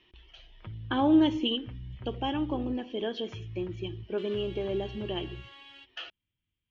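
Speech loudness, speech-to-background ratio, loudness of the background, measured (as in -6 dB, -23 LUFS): -30.5 LUFS, 14.0 dB, -44.5 LUFS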